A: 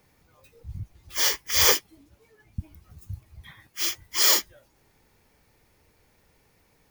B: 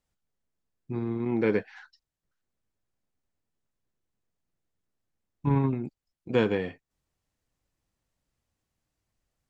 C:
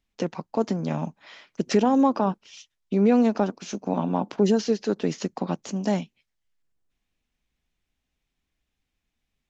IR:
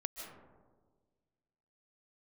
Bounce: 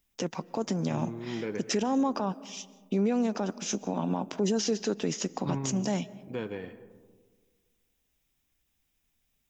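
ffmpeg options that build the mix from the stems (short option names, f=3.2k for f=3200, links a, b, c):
-filter_complex "[1:a]volume=-10dB,asplit=2[a][b];[b]volume=-9.5dB[c];[2:a]aemphasis=mode=production:type=50fm,bandreject=f=4.3k:w=9.9,alimiter=limit=-19dB:level=0:latency=1:release=88,volume=-1.5dB,asplit=2[d][e];[e]volume=-13.5dB[f];[a]alimiter=level_in=2dB:limit=-24dB:level=0:latency=1:release=351,volume=-2dB,volume=0dB[g];[3:a]atrim=start_sample=2205[h];[c][f]amix=inputs=2:normalize=0[i];[i][h]afir=irnorm=-1:irlink=0[j];[d][g][j]amix=inputs=3:normalize=0"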